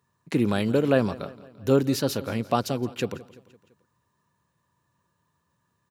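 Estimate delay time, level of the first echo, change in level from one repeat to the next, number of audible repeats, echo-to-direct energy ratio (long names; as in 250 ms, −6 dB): 170 ms, −19.0 dB, −5.5 dB, 3, −17.5 dB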